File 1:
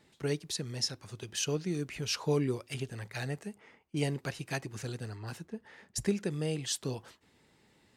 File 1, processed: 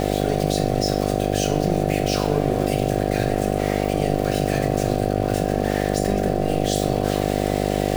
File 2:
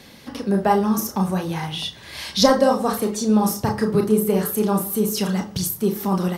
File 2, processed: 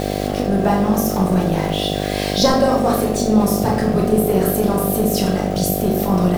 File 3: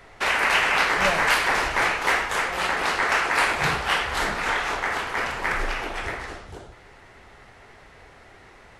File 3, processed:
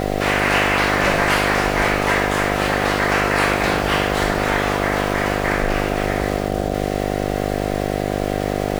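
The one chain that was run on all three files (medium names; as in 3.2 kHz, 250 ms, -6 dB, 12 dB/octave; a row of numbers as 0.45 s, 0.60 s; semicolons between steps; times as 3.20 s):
jump at every zero crossing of -27.5 dBFS; simulated room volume 190 m³, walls mixed, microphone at 0.87 m; mains buzz 50 Hz, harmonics 15, -20 dBFS 0 dB/octave; trim -2 dB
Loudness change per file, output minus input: +13.5 LU, +3.5 LU, +3.5 LU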